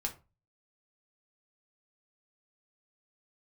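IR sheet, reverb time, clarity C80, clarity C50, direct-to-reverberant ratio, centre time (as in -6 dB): 0.30 s, 20.5 dB, 14.0 dB, 1.0 dB, 11 ms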